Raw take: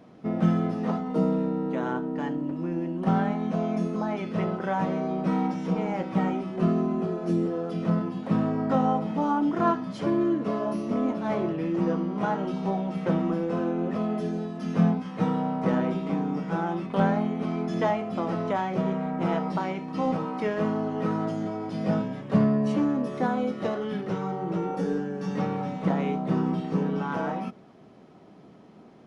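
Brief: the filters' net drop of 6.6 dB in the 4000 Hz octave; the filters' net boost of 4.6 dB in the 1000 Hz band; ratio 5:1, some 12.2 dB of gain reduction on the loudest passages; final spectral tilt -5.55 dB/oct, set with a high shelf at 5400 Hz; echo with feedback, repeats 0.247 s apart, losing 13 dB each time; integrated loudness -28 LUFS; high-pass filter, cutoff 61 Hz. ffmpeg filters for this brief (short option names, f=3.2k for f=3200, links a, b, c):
-af "highpass=61,equalizer=f=1k:t=o:g=6.5,equalizer=f=4k:t=o:g=-8.5,highshelf=f=5.4k:g=-4.5,acompressor=threshold=-30dB:ratio=5,aecho=1:1:247|494|741:0.224|0.0493|0.0108,volume=5.5dB"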